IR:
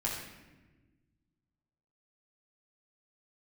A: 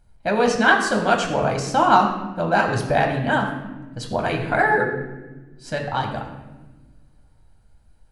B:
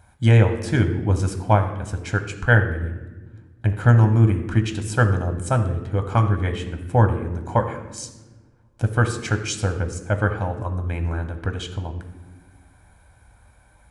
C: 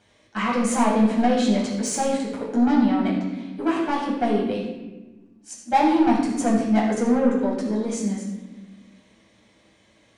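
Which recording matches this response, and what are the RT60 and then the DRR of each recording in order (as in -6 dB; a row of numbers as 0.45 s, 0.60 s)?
C; no single decay rate, no single decay rate, no single decay rate; 1.5 dB, 6.0 dB, -5.5 dB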